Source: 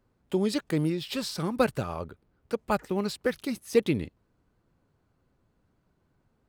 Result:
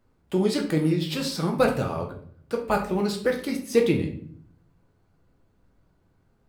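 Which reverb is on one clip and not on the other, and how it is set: shoebox room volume 75 m³, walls mixed, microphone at 0.62 m; gain +1.5 dB

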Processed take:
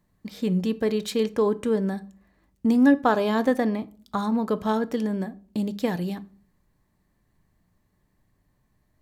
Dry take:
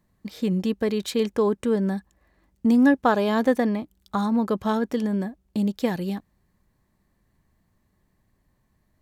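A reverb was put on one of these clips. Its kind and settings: shoebox room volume 340 m³, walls furnished, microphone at 0.38 m; gain -1 dB

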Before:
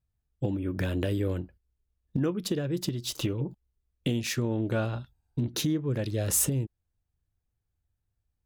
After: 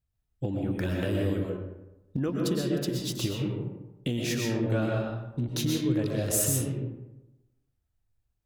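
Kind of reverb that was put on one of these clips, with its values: digital reverb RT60 1 s, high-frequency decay 0.5×, pre-delay 85 ms, DRR -1 dB; gain -2 dB

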